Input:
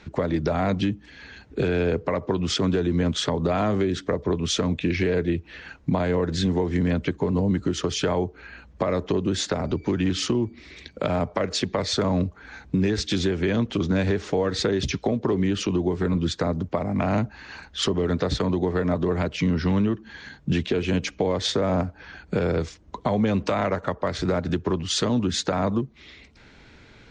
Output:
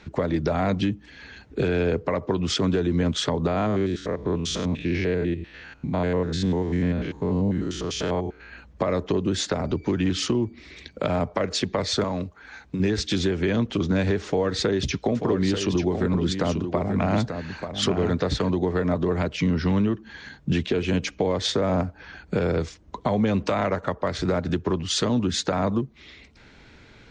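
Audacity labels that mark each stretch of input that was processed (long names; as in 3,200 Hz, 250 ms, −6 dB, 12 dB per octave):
3.470000	8.520000	spectrum averaged block by block every 100 ms
12.040000	12.800000	low-shelf EQ 440 Hz −8 dB
14.260000	18.500000	single-tap delay 888 ms −7.5 dB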